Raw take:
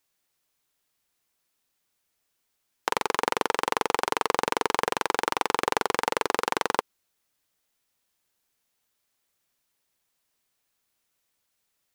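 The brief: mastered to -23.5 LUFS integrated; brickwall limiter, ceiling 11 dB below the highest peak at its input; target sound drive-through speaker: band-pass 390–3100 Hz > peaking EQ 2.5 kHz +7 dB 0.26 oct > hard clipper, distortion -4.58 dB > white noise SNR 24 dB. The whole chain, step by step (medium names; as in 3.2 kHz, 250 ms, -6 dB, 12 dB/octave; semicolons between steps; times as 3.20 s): peak limiter -14 dBFS; band-pass 390–3100 Hz; peaking EQ 2.5 kHz +7 dB 0.26 oct; hard clipper -31 dBFS; white noise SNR 24 dB; trim +19 dB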